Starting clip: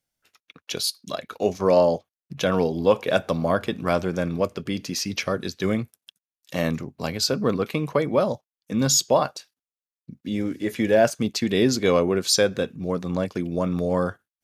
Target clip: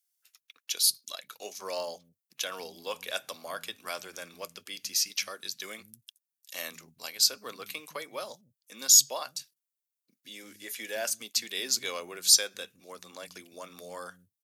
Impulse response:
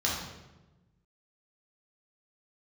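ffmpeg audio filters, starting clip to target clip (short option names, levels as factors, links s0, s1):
-filter_complex "[0:a]aderivative,acrossover=split=190[s0][s1];[s0]adelay=160[s2];[s2][s1]amix=inputs=2:normalize=0,volume=1.5"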